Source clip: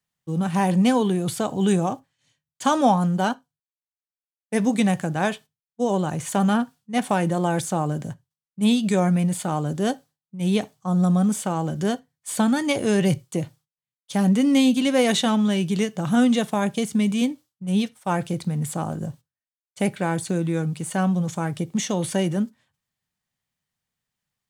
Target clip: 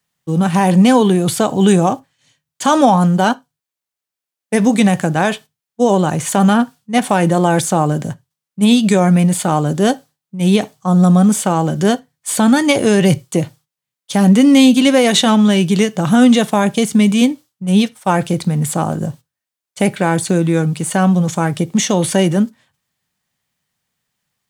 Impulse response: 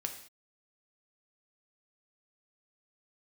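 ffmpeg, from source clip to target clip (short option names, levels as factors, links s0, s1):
-af "lowshelf=f=80:g=-8.5,alimiter=level_in=3.76:limit=0.891:release=50:level=0:latency=1,volume=0.891"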